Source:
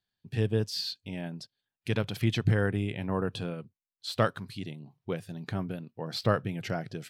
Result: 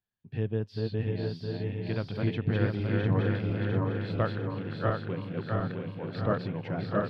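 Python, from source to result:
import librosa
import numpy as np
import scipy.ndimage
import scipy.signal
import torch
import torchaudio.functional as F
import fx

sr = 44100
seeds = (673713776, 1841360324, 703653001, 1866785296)

y = fx.reverse_delay_fb(x, sr, ms=350, feedback_pct=68, wet_db=-1.0)
y = fx.air_absorb(y, sr, metres=390.0)
y = fx.echo_feedback(y, sr, ms=661, feedback_pct=24, wet_db=-4.5)
y = y * 10.0 ** (-2.5 / 20.0)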